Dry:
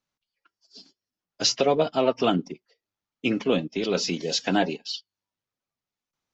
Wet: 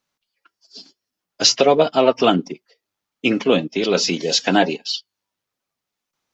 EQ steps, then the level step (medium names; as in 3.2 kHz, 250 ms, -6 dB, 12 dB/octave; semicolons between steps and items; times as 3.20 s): bass shelf 160 Hz -8 dB; +8.0 dB